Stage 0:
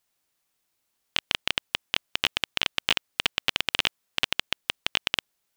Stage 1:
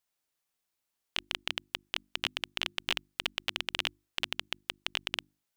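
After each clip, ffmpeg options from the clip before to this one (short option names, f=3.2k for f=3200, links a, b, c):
-af "bandreject=f=50:t=h:w=6,bandreject=f=100:t=h:w=6,bandreject=f=150:t=h:w=6,bandreject=f=200:t=h:w=6,bandreject=f=250:t=h:w=6,bandreject=f=300:t=h:w=6,bandreject=f=350:t=h:w=6,volume=-7.5dB"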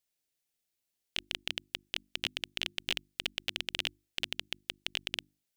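-af "equalizer=f=1.1k:t=o:w=1.1:g=-11.5"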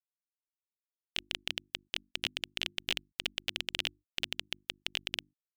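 -af "afftfilt=real='re*gte(hypot(re,im),0.000631)':imag='im*gte(hypot(re,im),0.000631)':win_size=1024:overlap=0.75"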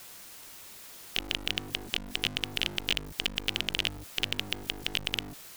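-af "aeval=exprs='val(0)+0.5*0.01*sgn(val(0))':c=same,volume=4dB"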